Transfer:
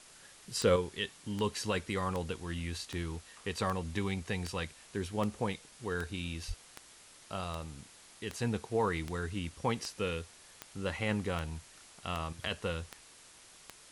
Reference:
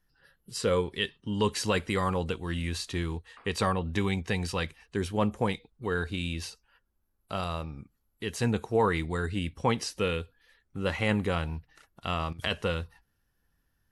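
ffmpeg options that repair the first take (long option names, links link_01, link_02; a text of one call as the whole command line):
ffmpeg -i in.wav -filter_complex "[0:a]adeclick=threshold=4,asplit=3[link_01][link_02][link_03];[link_01]afade=type=out:start_time=6.47:duration=0.02[link_04];[link_02]highpass=frequency=140:width=0.5412,highpass=frequency=140:width=1.3066,afade=type=in:start_time=6.47:duration=0.02,afade=type=out:start_time=6.59:duration=0.02[link_05];[link_03]afade=type=in:start_time=6.59:duration=0.02[link_06];[link_04][link_05][link_06]amix=inputs=3:normalize=0,afwtdn=0.002,asetnsamples=nb_out_samples=441:pad=0,asendcmd='0.76 volume volume 6dB',volume=0dB" out.wav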